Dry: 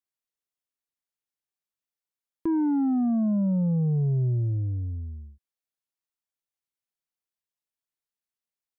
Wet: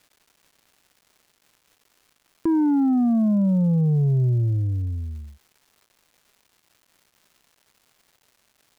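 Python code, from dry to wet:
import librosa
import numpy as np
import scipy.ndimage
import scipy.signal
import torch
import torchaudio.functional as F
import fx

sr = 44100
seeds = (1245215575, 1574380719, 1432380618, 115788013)

y = fx.dmg_crackle(x, sr, seeds[0], per_s=460.0, level_db=-52.0)
y = F.gain(torch.from_numpy(y), 4.5).numpy()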